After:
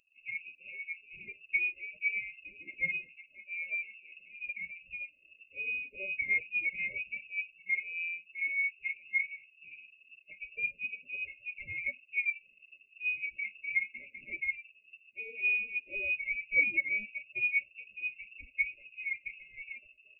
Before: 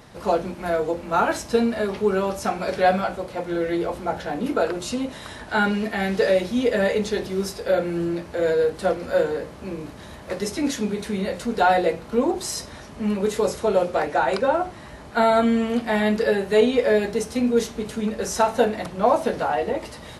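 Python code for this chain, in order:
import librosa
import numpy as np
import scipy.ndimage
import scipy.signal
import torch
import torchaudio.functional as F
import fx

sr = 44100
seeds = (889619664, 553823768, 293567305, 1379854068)

y = fx.bin_expand(x, sr, power=2.0)
y = fx.freq_invert(y, sr, carrier_hz=2700)
y = fx.brickwall_bandstop(y, sr, low_hz=630.0, high_hz=2100.0)
y = y * librosa.db_to_amplitude(-7.5)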